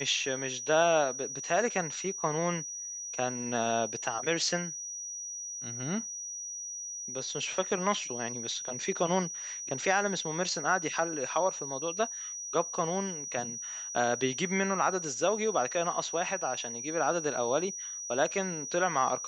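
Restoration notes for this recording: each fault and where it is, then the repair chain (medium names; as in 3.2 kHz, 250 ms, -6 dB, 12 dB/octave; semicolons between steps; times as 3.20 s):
whine 5.8 kHz -37 dBFS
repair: band-stop 5.8 kHz, Q 30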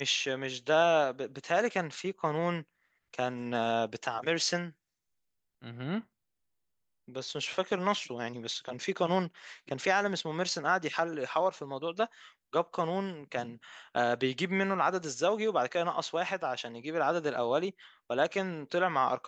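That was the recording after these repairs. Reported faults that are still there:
nothing left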